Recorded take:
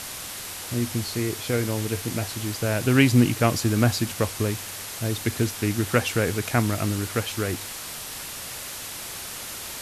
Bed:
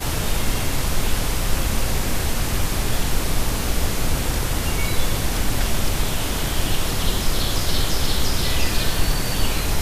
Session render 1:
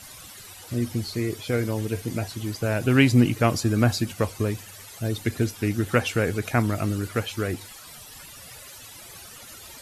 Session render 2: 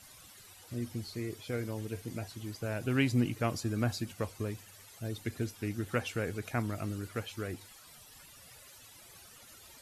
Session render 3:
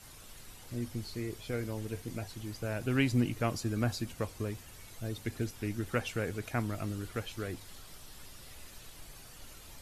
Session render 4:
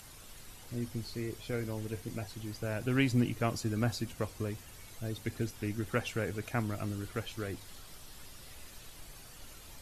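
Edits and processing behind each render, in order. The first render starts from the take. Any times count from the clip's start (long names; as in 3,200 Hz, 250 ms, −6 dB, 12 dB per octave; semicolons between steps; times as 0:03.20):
broadband denoise 14 dB, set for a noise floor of −36 dBFS
level −11 dB
mix in bed −32.5 dB
upward compression, threshold −53 dBFS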